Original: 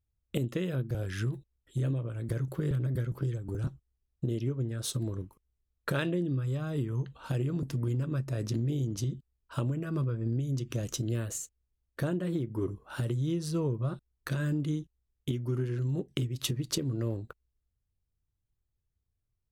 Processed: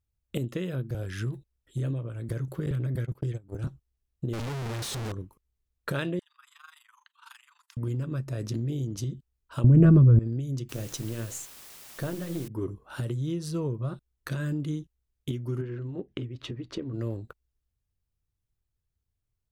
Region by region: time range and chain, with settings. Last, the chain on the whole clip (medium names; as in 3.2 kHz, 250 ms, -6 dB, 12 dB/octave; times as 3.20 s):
2.66–3.65 s: gate -33 dBFS, range -43 dB + peaking EQ 2.3 kHz +4 dB 0.69 oct + level flattener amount 50%
4.33–5.12 s: one-bit comparator + treble shelf 11 kHz -11 dB
6.19–7.77 s: steep high-pass 940 Hz 72 dB/octave + AM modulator 24 Hz, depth 75%
9.64–10.19 s: tilt EQ -4.5 dB/octave + level flattener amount 100%
10.69–12.48 s: partial rectifier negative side -3 dB + hum notches 60/120/180/240/300/360/420/480/540 Hz + word length cut 8-bit, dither triangular
15.61–16.94 s: low-pass 2.5 kHz + peaking EQ 150 Hz -14 dB 0.35 oct
whole clip: none